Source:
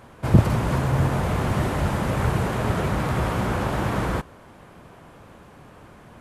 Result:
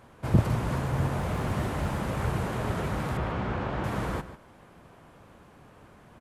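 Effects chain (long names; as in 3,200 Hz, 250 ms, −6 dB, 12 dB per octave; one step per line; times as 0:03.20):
0:01.19–0:02.22: surface crackle 40 per second −31 dBFS
0:03.17–0:03.84: low-pass filter 3,600 Hz 12 dB per octave
slap from a distant wall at 25 metres, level −13 dB
level −6.5 dB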